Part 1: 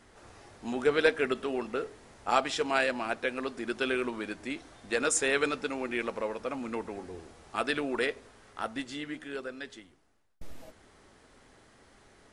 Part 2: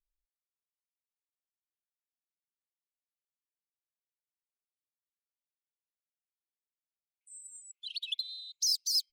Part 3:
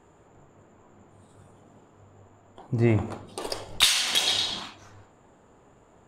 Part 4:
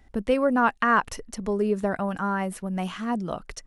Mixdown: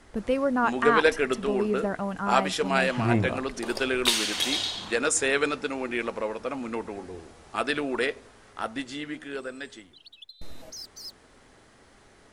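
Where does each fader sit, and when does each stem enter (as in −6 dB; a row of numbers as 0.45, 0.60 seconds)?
+3.0, −12.0, −3.5, −3.0 decibels; 0.00, 2.10, 0.25, 0.00 seconds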